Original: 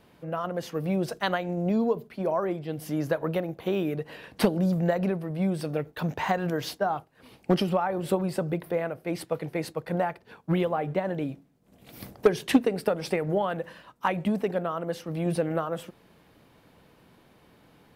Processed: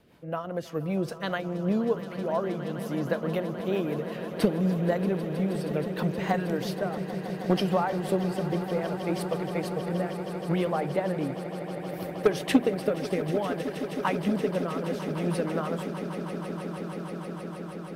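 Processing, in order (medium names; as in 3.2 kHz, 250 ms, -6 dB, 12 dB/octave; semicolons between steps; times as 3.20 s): rotary cabinet horn 5 Hz, later 0.65 Hz, at 5.64 s; echo with a slow build-up 158 ms, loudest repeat 8, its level -15.5 dB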